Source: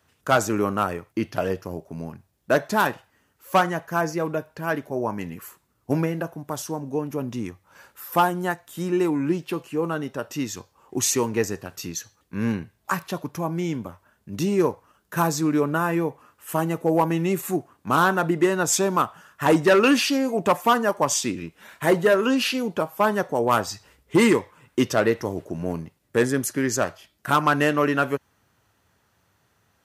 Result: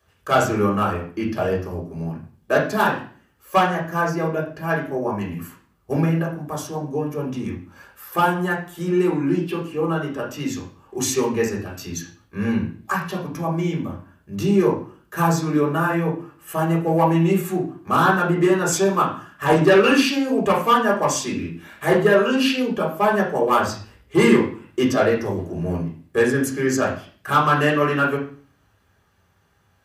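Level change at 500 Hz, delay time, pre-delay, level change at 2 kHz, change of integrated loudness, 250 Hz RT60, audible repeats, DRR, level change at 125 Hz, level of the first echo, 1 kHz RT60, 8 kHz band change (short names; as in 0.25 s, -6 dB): +3.0 dB, none, 3 ms, +2.5 dB, +2.5 dB, 0.55 s, none, -3.0 dB, +5.5 dB, none, 0.45 s, -2.0 dB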